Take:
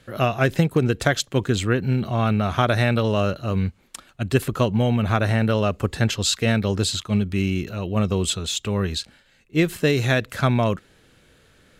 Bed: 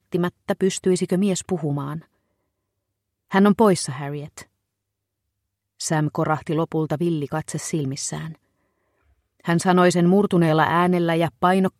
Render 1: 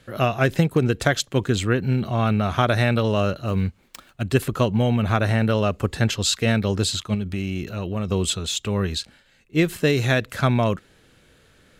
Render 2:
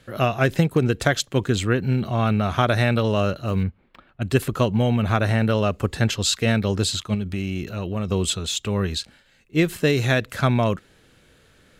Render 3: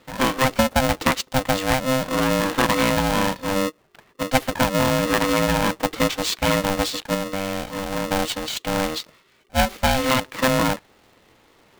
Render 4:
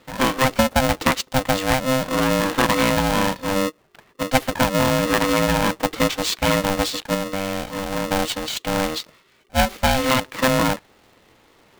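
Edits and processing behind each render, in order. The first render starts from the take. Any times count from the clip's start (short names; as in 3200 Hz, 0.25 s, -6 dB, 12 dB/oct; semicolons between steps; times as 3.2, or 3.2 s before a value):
3.45–4.22 switching dead time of 0.053 ms; 7.14–8.11 compressor, threshold -21 dBFS
3.63–4.22 air absorption 430 m
median filter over 5 samples; polarity switched at an audio rate 390 Hz
gain +1 dB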